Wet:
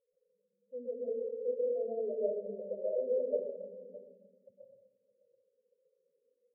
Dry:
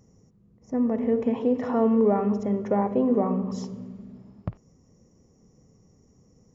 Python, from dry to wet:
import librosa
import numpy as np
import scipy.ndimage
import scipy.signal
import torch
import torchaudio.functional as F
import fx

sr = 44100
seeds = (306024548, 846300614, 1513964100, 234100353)

p1 = fx.vowel_filter(x, sr, vowel='e')
p2 = fx.spec_topn(p1, sr, count=4)
p3 = p2 + fx.echo_single(p2, sr, ms=613, db=-17.5, dry=0)
p4 = fx.rev_freeverb(p3, sr, rt60_s=0.82, hf_ratio=0.85, predelay_ms=95, drr_db=-6.5)
y = p4 * librosa.db_to_amplitude(-6.0)